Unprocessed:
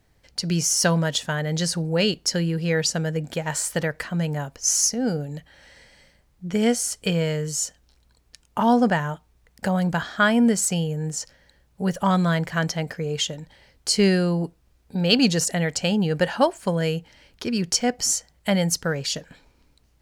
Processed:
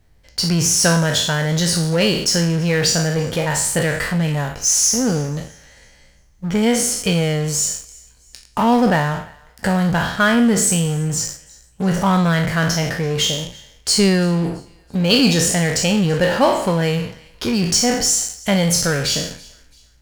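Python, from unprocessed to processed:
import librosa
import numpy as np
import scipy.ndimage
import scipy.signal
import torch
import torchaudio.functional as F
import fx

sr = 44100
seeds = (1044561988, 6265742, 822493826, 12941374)

p1 = fx.spec_trails(x, sr, decay_s=0.58)
p2 = fx.low_shelf(p1, sr, hz=78.0, db=10.0)
p3 = fx.fuzz(p2, sr, gain_db=31.0, gate_db=-38.0)
p4 = p2 + F.gain(torch.from_numpy(p3), -11.5).numpy()
y = fx.echo_thinned(p4, sr, ms=334, feedback_pct=36, hz=1100.0, wet_db=-23.0)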